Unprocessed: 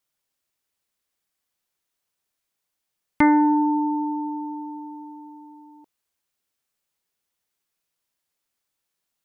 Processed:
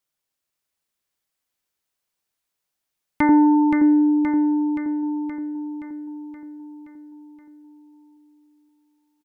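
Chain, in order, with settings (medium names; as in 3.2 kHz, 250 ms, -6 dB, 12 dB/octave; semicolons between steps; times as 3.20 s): 3.29–5.03 s: tilt EQ -3.5 dB/octave; feedback delay 523 ms, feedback 59%, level -5 dB; trim -2 dB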